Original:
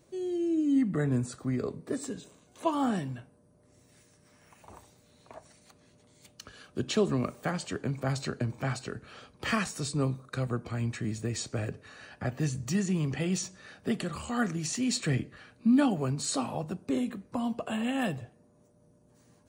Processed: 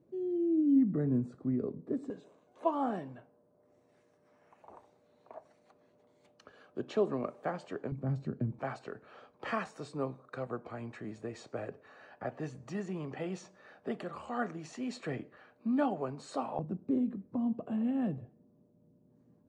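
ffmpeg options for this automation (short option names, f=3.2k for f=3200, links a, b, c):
-af "asetnsamples=n=441:p=0,asendcmd='2.1 bandpass f 620;7.92 bandpass f 190;8.59 bandpass f 700;16.59 bandpass f 230',bandpass=f=260:t=q:w=0.98:csg=0"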